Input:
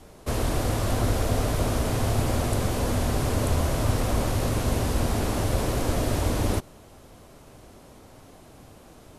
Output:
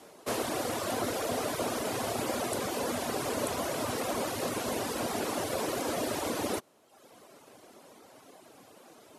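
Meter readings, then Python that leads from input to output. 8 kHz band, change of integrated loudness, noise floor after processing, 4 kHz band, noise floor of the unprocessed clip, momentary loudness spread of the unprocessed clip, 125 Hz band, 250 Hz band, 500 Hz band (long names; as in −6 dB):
−2.5 dB, −6.5 dB, −57 dBFS, −2.5 dB, −50 dBFS, 1 LU, −19.5 dB, −6.5 dB, −3.0 dB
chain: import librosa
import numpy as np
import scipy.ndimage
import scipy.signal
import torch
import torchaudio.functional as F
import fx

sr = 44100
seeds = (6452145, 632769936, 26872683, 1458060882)

y = scipy.signal.sosfilt(scipy.signal.butter(2, 290.0, 'highpass', fs=sr, output='sos'), x)
y = fx.dereverb_blind(y, sr, rt60_s=0.93)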